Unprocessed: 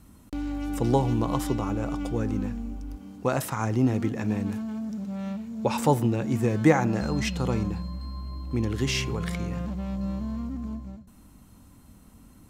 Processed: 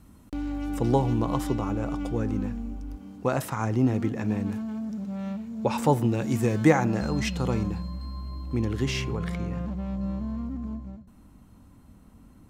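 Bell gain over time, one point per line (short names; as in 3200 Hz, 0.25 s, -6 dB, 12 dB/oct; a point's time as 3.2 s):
bell 13000 Hz 2.7 oct
5.98 s -4 dB
6.27 s +7 dB
6.86 s -1 dB
8.41 s -1 dB
9.23 s -9.5 dB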